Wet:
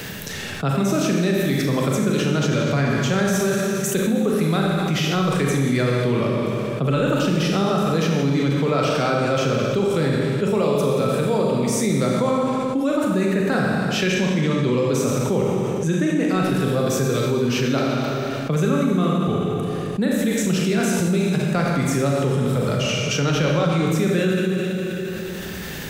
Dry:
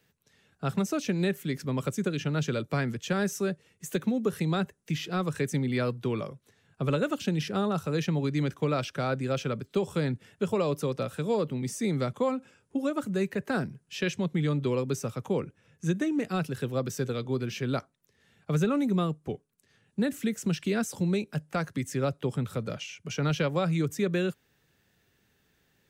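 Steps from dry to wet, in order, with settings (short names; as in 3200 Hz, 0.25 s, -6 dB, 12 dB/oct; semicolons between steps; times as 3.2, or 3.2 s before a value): Schroeder reverb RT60 1.7 s, combs from 29 ms, DRR -1.5 dB; fast leveller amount 70%; gain +1.5 dB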